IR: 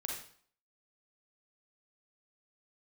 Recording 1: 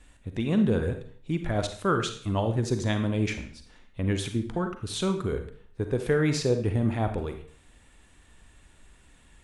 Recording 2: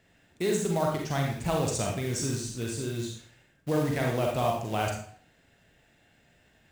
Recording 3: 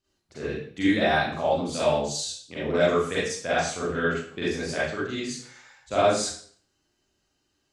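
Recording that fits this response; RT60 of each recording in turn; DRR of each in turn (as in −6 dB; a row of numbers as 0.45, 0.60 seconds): 2; 0.55, 0.55, 0.55 seconds; 6.5, −1.0, −10.5 decibels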